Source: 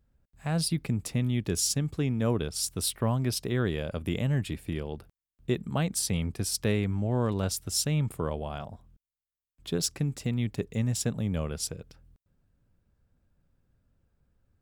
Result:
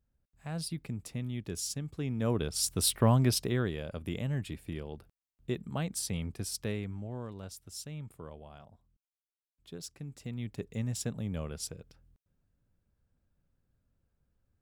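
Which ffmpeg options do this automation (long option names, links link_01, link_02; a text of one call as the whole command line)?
ffmpeg -i in.wav -af "volume=12.5dB,afade=type=in:start_time=1.92:duration=1.24:silence=0.237137,afade=type=out:start_time=3.16:duration=0.56:silence=0.334965,afade=type=out:start_time=6.38:duration=0.93:silence=0.354813,afade=type=in:start_time=9.98:duration=0.77:silence=0.354813" out.wav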